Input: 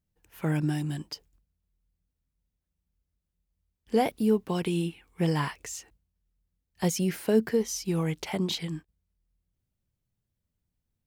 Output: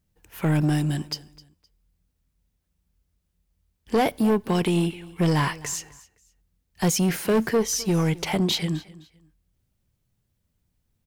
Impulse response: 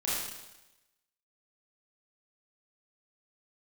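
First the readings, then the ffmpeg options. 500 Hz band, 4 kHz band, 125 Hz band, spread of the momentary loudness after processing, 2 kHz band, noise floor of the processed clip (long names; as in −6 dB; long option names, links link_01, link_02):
+3.5 dB, +7.0 dB, +6.0 dB, 8 LU, +7.0 dB, −75 dBFS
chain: -filter_complex "[0:a]asoftclip=type=tanh:threshold=-24.5dB,aecho=1:1:258|516:0.0944|0.0255,asplit=2[link_01][link_02];[1:a]atrim=start_sample=2205,asetrate=74970,aresample=44100[link_03];[link_02][link_03]afir=irnorm=-1:irlink=0,volume=-28.5dB[link_04];[link_01][link_04]amix=inputs=2:normalize=0,volume=8.5dB"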